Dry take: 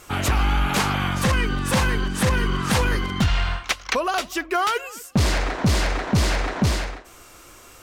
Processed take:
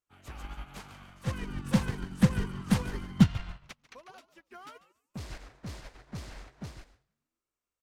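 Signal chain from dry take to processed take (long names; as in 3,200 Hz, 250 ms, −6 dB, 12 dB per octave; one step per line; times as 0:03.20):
0:01.27–0:03.75: parametric band 180 Hz +11.5 dB 1.6 octaves
echo with shifted repeats 144 ms, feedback 43%, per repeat −95 Hz, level −7 dB
expander for the loud parts 2.5 to 1, over −34 dBFS
level −6.5 dB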